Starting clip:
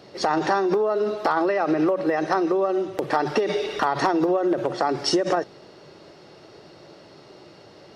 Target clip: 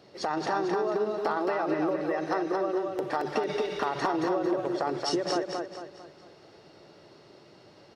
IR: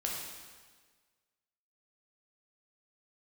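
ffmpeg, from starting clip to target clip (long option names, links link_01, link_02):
-af "aecho=1:1:224|448|672|896|1120:0.631|0.259|0.106|0.0435|0.0178,volume=-8dB"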